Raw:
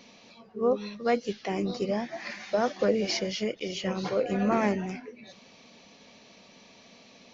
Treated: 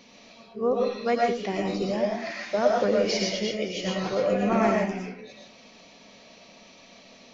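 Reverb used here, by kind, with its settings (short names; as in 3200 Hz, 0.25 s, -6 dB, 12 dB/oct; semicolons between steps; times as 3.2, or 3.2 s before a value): digital reverb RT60 0.42 s, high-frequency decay 0.7×, pre-delay 70 ms, DRR -1 dB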